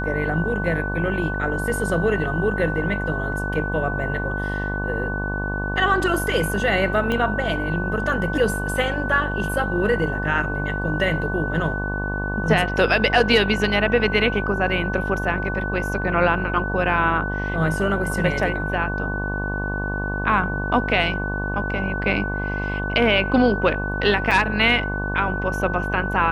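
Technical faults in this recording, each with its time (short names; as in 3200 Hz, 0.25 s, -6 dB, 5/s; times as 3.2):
buzz 50 Hz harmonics 23 -27 dBFS
tone 1500 Hz -27 dBFS
7.12 pop -12 dBFS
24.31 gap 4.4 ms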